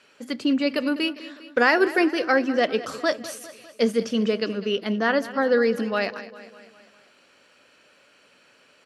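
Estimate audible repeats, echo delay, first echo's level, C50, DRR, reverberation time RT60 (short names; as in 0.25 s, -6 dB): 4, 0.201 s, -16.0 dB, none, none, none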